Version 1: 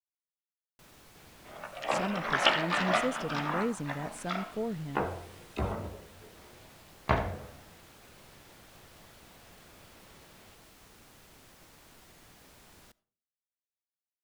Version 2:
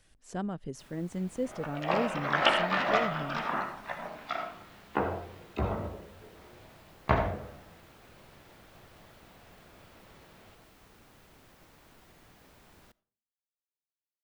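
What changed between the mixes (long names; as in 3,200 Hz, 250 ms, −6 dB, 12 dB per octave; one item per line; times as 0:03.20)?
speech: entry −1.65 s
second sound: send +7.0 dB
master: add parametric band 8,500 Hz −7 dB 2.4 octaves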